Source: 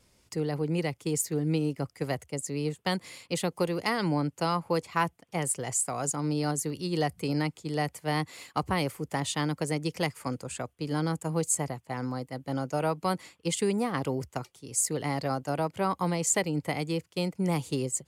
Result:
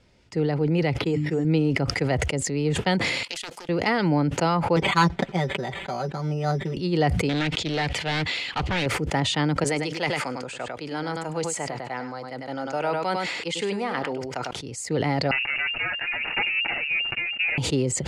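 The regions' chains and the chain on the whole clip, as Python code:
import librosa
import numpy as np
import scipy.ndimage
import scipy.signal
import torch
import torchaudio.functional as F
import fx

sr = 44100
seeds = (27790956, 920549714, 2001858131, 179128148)

y = fx.chain(x, sr, fx.hum_notches(base_hz=50, count=6),
    fx.resample_bad(factor=6, down='filtered', up='hold'), at=(0.98, 1.45))
y = fx.chain(y, sr, fx.differentiator(),
    fx.level_steps(step_db=20),
    fx.doppler_dist(depth_ms=0.71), at=(3.23, 3.69))
y = fx.chain(y, sr, fx.comb(ms=5.2, depth=0.88),
    fx.resample_bad(factor=8, down='filtered', up='hold'),
    fx.upward_expand(threshold_db=-45.0, expansion=1.5), at=(4.76, 6.77))
y = fx.chain(y, sr, fx.peak_eq(hz=3300.0, db=12.5, octaves=1.5),
    fx.clip_hard(threshold_db=-26.5),
    fx.doppler_dist(depth_ms=0.4), at=(7.29, 8.86))
y = fx.chain(y, sr, fx.highpass(hz=730.0, slope=6),
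    fx.echo_single(ms=100, db=-9.5), at=(9.64, 14.51))
y = fx.chain(y, sr, fx.lower_of_two(delay_ms=8.6),
    fx.air_absorb(metres=220.0),
    fx.freq_invert(carrier_hz=2800), at=(15.31, 17.58))
y = scipy.signal.sosfilt(scipy.signal.butter(2, 3800.0, 'lowpass', fs=sr, output='sos'), y)
y = fx.notch(y, sr, hz=1100.0, q=6.6)
y = fx.sustainer(y, sr, db_per_s=28.0)
y = y * 10.0 ** (6.0 / 20.0)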